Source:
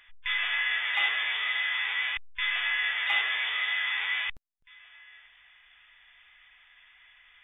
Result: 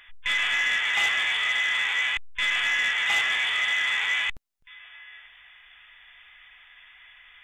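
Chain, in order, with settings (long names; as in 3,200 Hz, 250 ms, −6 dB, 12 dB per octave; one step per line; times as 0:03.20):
soft clipping −24 dBFS, distortion −16 dB
level +6 dB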